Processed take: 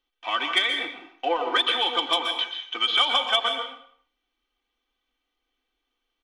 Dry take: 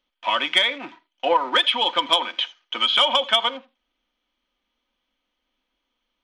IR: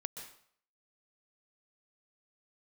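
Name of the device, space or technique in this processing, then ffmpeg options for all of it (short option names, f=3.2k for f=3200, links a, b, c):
microphone above a desk: -filter_complex "[0:a]aecho=1:1:2.6:0.69[a];[1:a]atrim=start_sample=2205[b];[a][b]afir=irnorm=-1:irlink=0,volume=-2.5dB"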